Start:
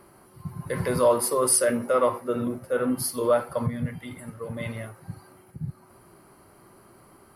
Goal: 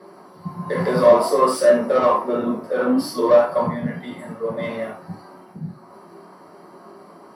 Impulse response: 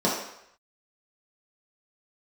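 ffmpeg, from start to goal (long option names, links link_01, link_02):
-filter_complex "[0:a]flanger=delay=10:depth=8.1:regen=86:speed=0.58:shape=sinusoidal,asplit=2[link_01][link_02];[link_02]highpass=frequency=720:poles=1,volume=19dB,asoftclip=type=tanh:threshold=-11.5dB[link_03];[link_01][link_03]amix=inputs=2:normalize=0,lowpass=frequency=5000:poles=1,volume=-6dB[link_04];[1:a]atrim=start_sample=2205,atrim=end_sample=3969[link_05];[link_04][link_05]afir=irnorm=-1:irlink=0,volume=-12dB"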